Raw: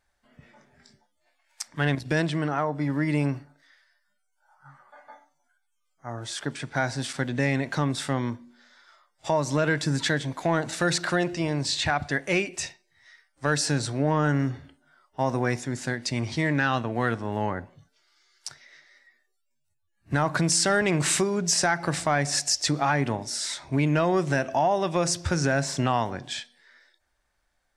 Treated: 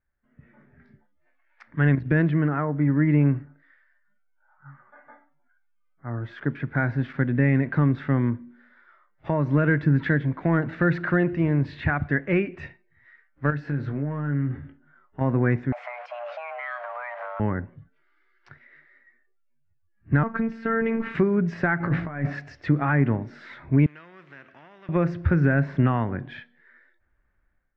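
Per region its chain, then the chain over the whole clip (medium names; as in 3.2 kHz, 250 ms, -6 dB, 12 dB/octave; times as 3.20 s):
13.50–15.21 s: compression 5:1, threshold -29 dBFS + doubling 21 ms -8 dB
15.72–17.40 s: jump at every zero crossing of -32.5 dBFS + compression 10:1, threshold -27 dBFS + frequency shift +480 Hz
20.23–21.15 s: treble shelf 4.2 kHz -11.5 dB + robot voice 226 Hz + comb 6.8 ms, depth 34%
21.80–22.33 s: treble shelf 6.2 kHz -10 dB + compressor with a negative ratio -28 dBFS, ratio -0.5 + doubling 18 ms -9 dB
23.86–24.89 s: differentiator + spectrum-flattening compressor 2:1
whole clip: low-pass 1.8 kHz 24 dB/octave; peaking EQ 780 Hz -13.5 dB 1.5 oct; level rider gain up to 11.5 dB; trim -3.5 dB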